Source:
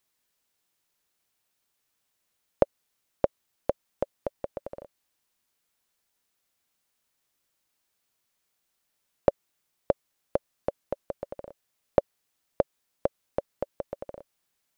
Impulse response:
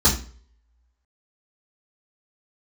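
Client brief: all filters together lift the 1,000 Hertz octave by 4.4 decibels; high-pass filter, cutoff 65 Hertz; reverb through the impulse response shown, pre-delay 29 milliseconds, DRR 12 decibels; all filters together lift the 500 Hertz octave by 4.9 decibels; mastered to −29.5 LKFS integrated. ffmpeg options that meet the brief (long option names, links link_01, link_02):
-filter_complex "[0:a]highpass=65,equalizer=frequency=500:width_type=o:gain=4.5,equalizer=frequency=1000:width_type=o:gain=4,asplit=2[link_01][link_02];[1:a]atrim=start_sample=2205,adelay=29[link_03];[link_02][link_03]afir=irnorm=-1:irlink=0,volume=-29dB[link_04];[link_01][link_04]amix=inputs=2:normalize=0,volume=-1dB"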